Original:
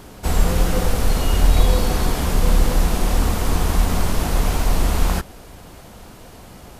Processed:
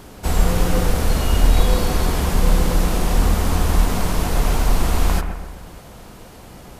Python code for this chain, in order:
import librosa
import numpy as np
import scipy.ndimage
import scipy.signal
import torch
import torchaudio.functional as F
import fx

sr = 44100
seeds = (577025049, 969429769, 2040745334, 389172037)

y = fx.echo_bbd(x, sr, ms=129, stages=2048, feedback_pct=48, wet_db=-7.5)